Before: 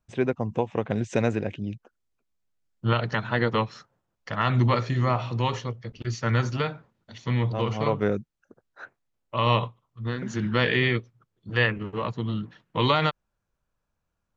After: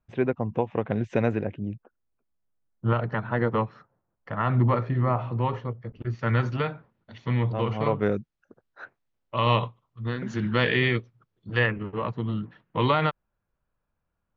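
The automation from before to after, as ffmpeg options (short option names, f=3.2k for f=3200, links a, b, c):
-af "asetnsamples=n=441:p=0,asendcmd='1.45 lowpass f 1500;6.19 lowpass f 2800;8.03 lowpass f 4500;11.59 lowpass f 2500',lowpass=2.6k"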